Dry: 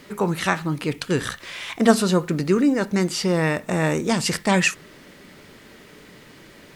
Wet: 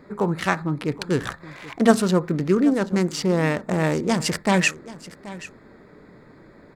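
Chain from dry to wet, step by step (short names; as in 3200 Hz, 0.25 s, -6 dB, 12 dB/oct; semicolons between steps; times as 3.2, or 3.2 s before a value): Wiener smoothing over 15 samples; echo 0.781 s -17.5 dB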